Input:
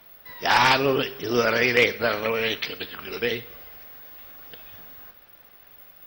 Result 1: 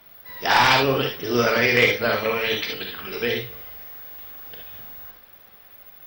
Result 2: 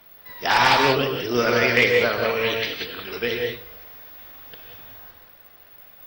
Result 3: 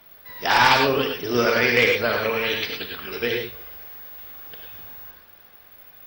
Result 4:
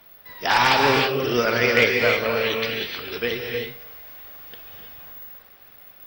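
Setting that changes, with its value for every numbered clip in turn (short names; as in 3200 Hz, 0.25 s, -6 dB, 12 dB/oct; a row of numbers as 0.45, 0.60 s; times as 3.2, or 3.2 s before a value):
non-linear reverb, gate: 90, 210, 130, 350 ms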